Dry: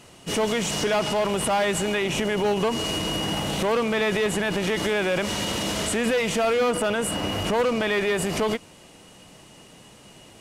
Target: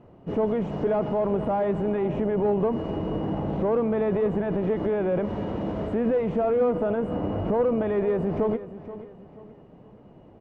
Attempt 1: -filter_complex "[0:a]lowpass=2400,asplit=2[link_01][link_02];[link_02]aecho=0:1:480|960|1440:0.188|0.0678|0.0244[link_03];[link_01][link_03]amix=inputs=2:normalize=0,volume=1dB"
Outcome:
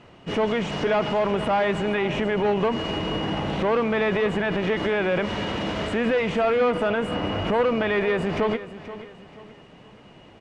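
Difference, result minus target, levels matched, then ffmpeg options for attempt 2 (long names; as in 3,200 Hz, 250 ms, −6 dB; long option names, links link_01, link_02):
2,000 Hz band +13.0 dB
-filter_complex "[0:a]lowpass=710,asplit=2[link_01][link_02];[link_02]aecho=0:1:480|960|1440:0.188|0.0678|0.0244[link_03];[link_01][link_03]amix=inputs=2:normalize=0,volume=1dB"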